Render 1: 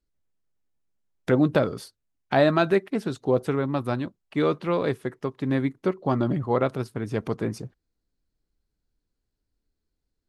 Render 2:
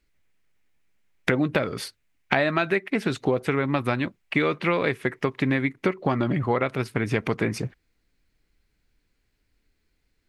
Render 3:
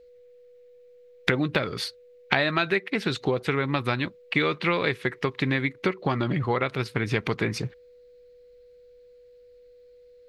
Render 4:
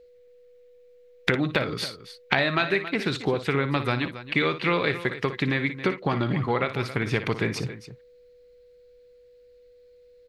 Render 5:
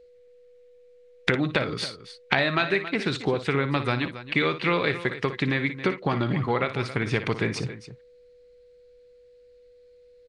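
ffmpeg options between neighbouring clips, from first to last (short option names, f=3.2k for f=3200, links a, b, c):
-af "equalizer=f=2.2k:w=1.4:g=13,acompressor=threshold=-28dB:ratio=6,volume=8dB"
-af "equalizer=f=250:t=o:w=0.67:g=-4,equalizer=f=630:t=o:w=0.67:g=-4,equalizer=f=4k:t=o:w=0.67:g=7,equalizer=f=10k:t=o:w=0.67:g=-5,aeval=exprs='val(0)+0.00316*sin(2*PI*490*n/s)':c=same"
-af "aecho=1:1:58|274:0.266|0.211"
-af "aresample=22050,aresample=44100"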